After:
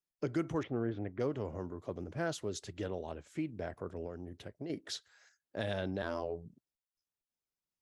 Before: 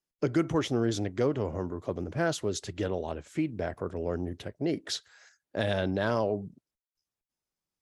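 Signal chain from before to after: 0.63–1.2 LPF 2300 Hz 24 dB/oct; 4.05–4.7 compressor, threshold -32 dBFS, peak gain reduction 7.5 dB; 6.02–6.46 robotiser 84.4 Hz; gain -7.5 dB

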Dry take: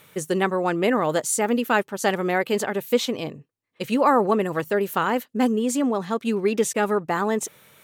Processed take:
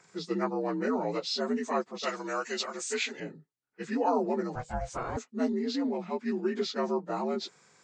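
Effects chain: inharmonic rescaling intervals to 83%; 2.03–3.2 tilt +4 dB/oct; 4.55–5.17 ring modulator 320 Hz; gain -7 dB

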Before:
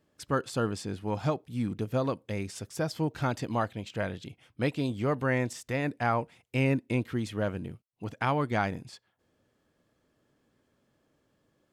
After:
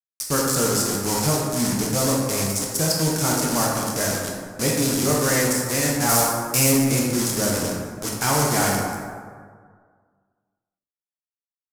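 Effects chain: requantised 6-bit, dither none; 6.09–6.72 high shelf 6000 Hz +9 dB; plate-style reverb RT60 1.8 s, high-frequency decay 0.45×, DRR -3 dB; soft clip -18 dBFS, distortion -16 dB; band shelf 7900 Hz +15 dB; gain +4 dB

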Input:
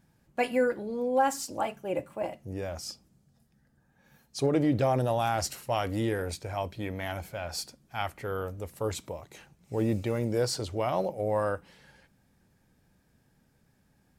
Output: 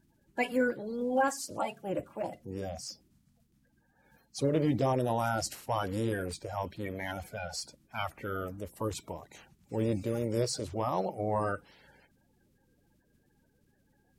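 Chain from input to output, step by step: bin magnitudes rounded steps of 30 dB; gain -2 dB

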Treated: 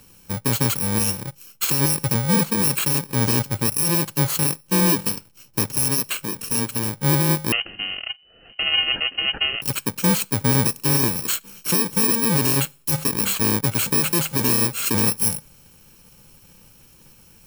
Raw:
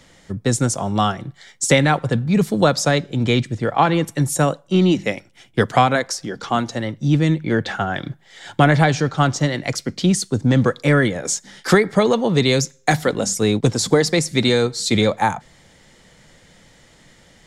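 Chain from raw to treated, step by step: FFT order left unsorted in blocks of 64 samples; limiter -10.5 dBFS, peak gain reduction 8.5 dB; 7.52–9.62 inverted band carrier 3000 Hz

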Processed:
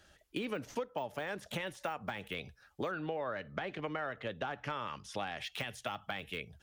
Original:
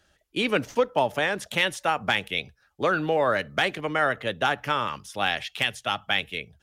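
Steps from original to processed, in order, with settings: de-esser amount 95%; 2.91–5.39 LPF 3700 Hz -> 7800 Hz 12 dB/oct; compressor 5:1, threshold -38 dBFS, peak gain reduction 18.5 dB; gain +1.5 dB

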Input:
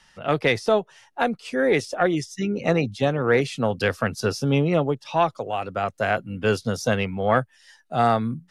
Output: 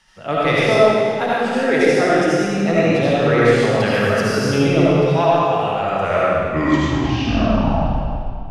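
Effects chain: tape stop at the end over 2.71 s; digital reverb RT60 2.2 s, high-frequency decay 0.9×, pre-delay 35 ms, DRR -8 dB; gain -1.5 dB

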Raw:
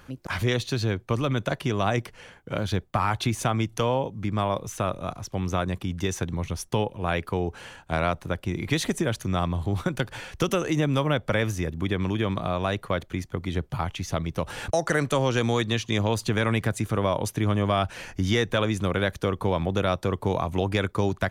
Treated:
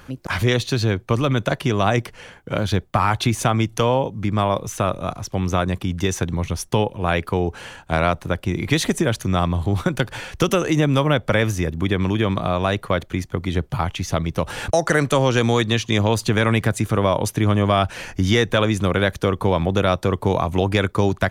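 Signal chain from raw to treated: gain +6 dB

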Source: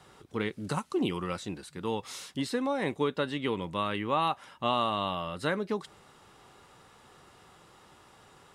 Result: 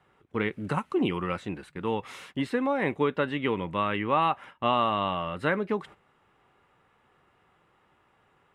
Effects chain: gate -48 dBFS, range -12 dB; resonant high shelf 3400 Hz -11 dB, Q 1.5; gain +3 dB

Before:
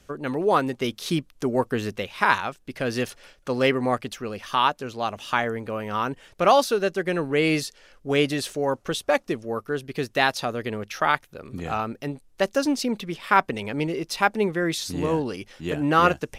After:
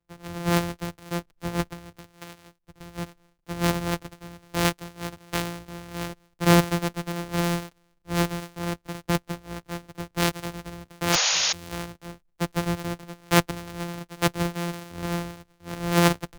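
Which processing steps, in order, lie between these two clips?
sample sorter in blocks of 256 samples; 1.69–2.95 compressor 10:1, threshold -29 dBFS, peak gain reduction 15.5 dB; 11.12–11.53 painted sound noise 460–7000 Hz -21 dBFS; three-band expander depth 70%; gain -4.5 dB

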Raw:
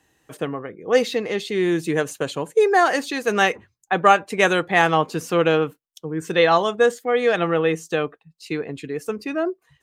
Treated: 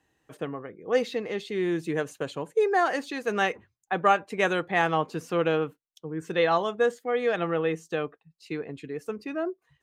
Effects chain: high shelf 4500 Hz -7.5 dB; gain -6.5 dB

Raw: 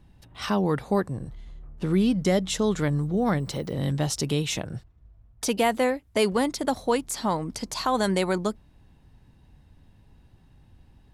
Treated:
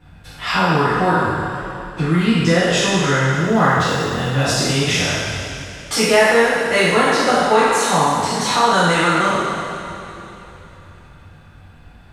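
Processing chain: spectral trails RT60 1.30 s; bell 1600 Hz +11.5 dB 1.7 oct; in parallel at +2 dB: compressor, threshold -30 dBFS, peak gain reduction 18 dB; on the sum: two-slope reverb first 0.32 s, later 3.3 s, from -17 dB, DRR -9 dB; speed mistake 48 kHz file played as 44.1 kHz; gain -9 dB

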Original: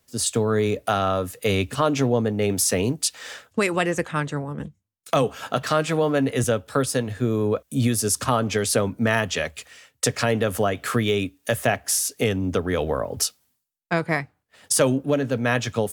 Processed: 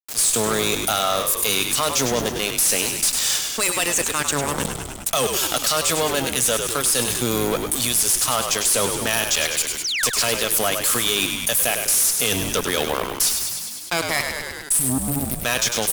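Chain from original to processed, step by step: pre-emphasis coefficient 0.97; spectral repair 14.52–15.4, 300–7600 Hz before; bell 1800 Hz -7.5 dB 0.92 oct; reverse; upward compressor, threshold -31 dBFS; reverse; fuzz box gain 36 dB, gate -44 dBFS; painted sound fall, 9.84–10.08, 990–6600 Hz -26 dBFS; on a send: frequency-shifting echo 0.101 s, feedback 56%, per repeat -60 Hz, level -10 dB; on the sum: fast leveller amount 50%; gain -3.5 dB

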